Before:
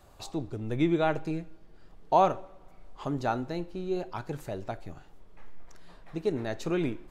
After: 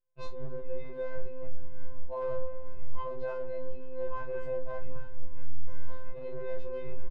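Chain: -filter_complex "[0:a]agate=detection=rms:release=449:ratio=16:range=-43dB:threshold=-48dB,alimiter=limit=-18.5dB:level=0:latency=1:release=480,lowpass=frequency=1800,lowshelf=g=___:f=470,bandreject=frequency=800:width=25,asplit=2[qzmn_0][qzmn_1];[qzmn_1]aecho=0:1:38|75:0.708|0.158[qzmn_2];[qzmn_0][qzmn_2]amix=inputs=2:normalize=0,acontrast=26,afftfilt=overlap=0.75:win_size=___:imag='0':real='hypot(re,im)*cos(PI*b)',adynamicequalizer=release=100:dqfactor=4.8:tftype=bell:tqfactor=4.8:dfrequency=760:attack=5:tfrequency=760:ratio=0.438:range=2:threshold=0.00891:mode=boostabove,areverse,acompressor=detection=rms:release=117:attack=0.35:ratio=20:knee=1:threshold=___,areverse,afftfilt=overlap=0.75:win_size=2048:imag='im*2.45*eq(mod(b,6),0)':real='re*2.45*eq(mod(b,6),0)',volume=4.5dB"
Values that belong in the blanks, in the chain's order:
8, 1024, -26dB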